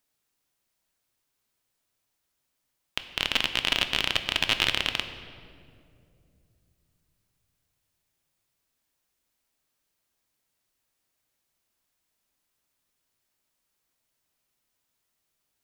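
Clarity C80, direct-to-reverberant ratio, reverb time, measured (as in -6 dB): 11.0 dB, 7.5 dB, 2.5 s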